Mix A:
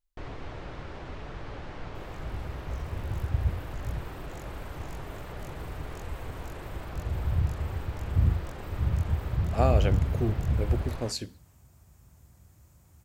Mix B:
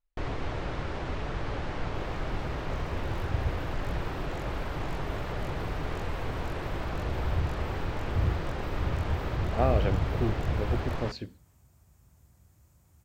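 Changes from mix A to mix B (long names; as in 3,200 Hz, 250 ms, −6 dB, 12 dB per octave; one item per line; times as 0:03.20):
speech: add high-frequency loss of the air 250 metres
first sound +6.5 dB
second sound −4.0 dB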